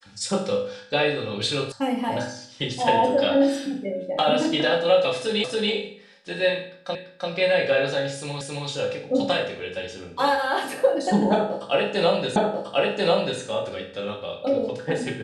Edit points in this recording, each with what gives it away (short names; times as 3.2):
1.72 sound cut off
5.44 repeat of the last 0.28 s
6.95 repeat of the last 0.34 s
8.41 repeat of the last 0.27 s
12.36 repeat of the last 1.04 s